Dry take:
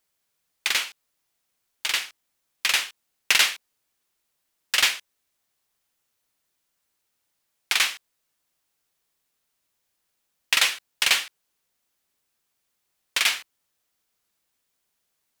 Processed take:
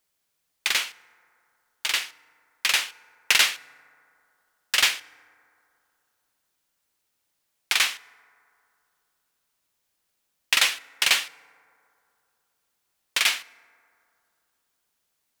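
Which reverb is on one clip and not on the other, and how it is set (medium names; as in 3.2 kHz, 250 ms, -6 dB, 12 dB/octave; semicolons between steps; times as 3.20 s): FDN reverb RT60 2.7 s, low-frequency decay 0.8×, high-frequency decay 0.3×, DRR 19.5 dB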